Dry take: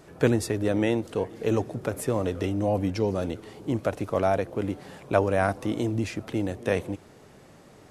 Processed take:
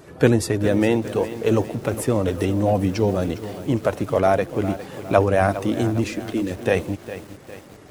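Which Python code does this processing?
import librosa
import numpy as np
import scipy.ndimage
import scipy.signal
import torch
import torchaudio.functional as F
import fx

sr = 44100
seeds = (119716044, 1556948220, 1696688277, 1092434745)

y = fx.spec_quant(x, sr, step_db=15)
y = fx.fixed_phaser(y, sr, hz=310.0, stages=4, at=(6.04, 6.51))
y = fx.echo_crushed(y, sr, ms=407, feedback_pct=55, bits=7, wet_db=-13)
y = y * librosa.db_to_amplitude(6.0)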